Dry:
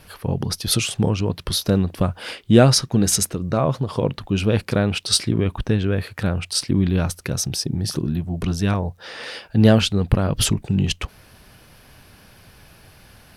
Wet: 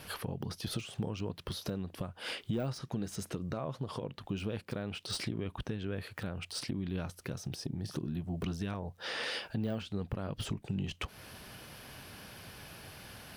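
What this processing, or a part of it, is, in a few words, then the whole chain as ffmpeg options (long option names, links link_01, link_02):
broadcast voice chain: -af "highpass=frequency=110:poles=1,deesser=0.75,acompressor=threshold=-35dB:ratio=3,equalizer=frequency=3100:width_type=o:width=0.28:gain=2.5,alimiter=level_in=0.5dB:limit=-24dB:level=0:latency=1:release=422,volume=-0.5dB"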